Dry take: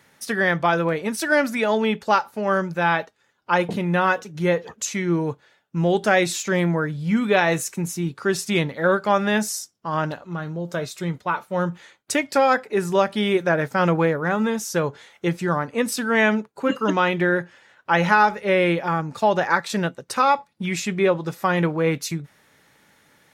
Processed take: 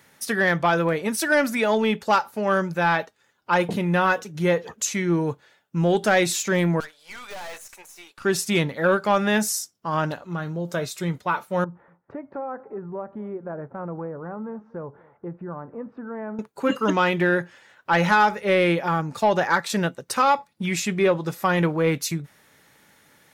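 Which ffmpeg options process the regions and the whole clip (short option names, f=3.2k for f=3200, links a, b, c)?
-filter_complex "[0:a]asettb=1/sr,asplit=3[a][b][c];[a]atrim=end=6.804[d];[b]atrim=start=6.8:end=8.25,asetpts=PTS-STARTPTS,afade=t=in:d=0.004:c=qsin,afade=t=out:st=1.446:d=0.004:c=qsin,deesser=0.95,highpass=f=630:w=0.5412,highpass=f=630:w=1.3066,aeval=exprs='(tanh(56.2*val(0)+0.7)-tanh(0.7))/56.2':c=same[e];[c]atrim=start=8.246[f];[d][e]acrossfade=d=0.004:c1=hsin:c2=qsin[g];[g][f]acrossfade=d=0.004:c1=qsin:c2=hsin,asettb=1/sr,asplit=3[h][i][j];[h]atrim=end=11.644[k];[i]atrim=start=11.64:end=16.39,asetpts=PTS-STARTPTS,afade=t=in:d=0.004:c=qsin,afade=t=out:st=4.746:d=0.004:c=qsin,lowpass=f=1.2k:w=0.5412,lowpass=f=1.2k:w=1.3066,acompressor=threshold=-40dB:ratio=2:attack=3.2:release=140:knee=1:detection=peak,aecho=1:1:240:0.0708,atrim=end_sample=209475[l];[j]atrim=start=16.386[m];[k][l]acrossfade=d=0.004:c1=hsin:c2=qsin[n];[n][m]acrossfade=d=0.004:c1=qsin:c2=hsin,acontrast=71,highshelf=f=9.8k:g=6.5,volume=-6.5dB"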